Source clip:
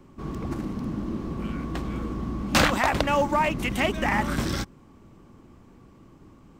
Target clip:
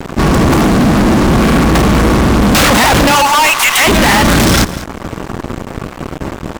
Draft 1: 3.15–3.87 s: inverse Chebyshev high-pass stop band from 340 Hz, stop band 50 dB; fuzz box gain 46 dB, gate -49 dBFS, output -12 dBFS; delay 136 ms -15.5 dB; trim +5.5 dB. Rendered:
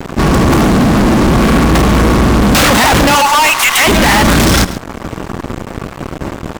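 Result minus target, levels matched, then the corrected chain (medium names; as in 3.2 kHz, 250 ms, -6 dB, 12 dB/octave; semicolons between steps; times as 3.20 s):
echo 62 ms early
3.15–3.87 s: inverse Chebyshev high-pass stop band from 340 Hz, stop band 50 dB; fuzz box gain 46 dB, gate -49 dBFS, output -12 dBFS; delay 198 ms -15.5 dB; trim +5.5 dB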